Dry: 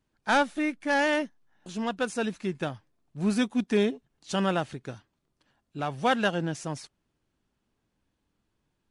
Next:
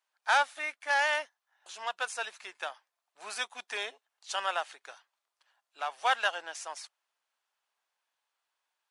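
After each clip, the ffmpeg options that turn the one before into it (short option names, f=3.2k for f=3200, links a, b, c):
-af "highpass=f=730:w=0.5412,highpass=f=730:w=1.3066"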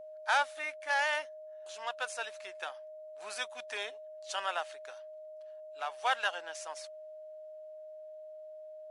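-af "aeval=exprs='val(0)+0.00794*sin(2*PI*620*n/s)':c=same,acontrast=38,volume=-8.5dB"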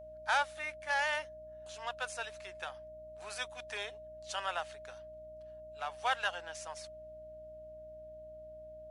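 -af "aeval=exprs='val(0)+0.00126*(sin(2*PI*60*n/s)+sin(2*PI*2*60*n/s)/2+sin(2*PI*3*60*n/s)/3+sin(2*PI*4*60*n/s)/4+sin(2*PI*5*60*n/s)/5)':c=same,volume=-2dB"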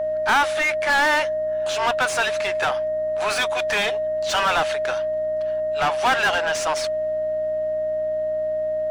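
-filter_complex "[0:a]asplit=2[a][b];[b]highpass=f=720:p=1,volume=28dB,asoftclip=type=tanh:threshold=-19.5dB[c];[a][c]amix=inputs=2:normalize=0,lowpass=f=2.5k:p=1,volume=-6dB,volume=8.5dB"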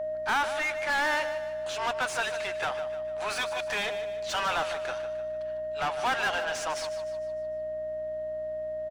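-af "aecho=1:1:151|302|453|604|755:0.266|0.12|0.0539|0.0242|0.0109,volume=-8.5dB"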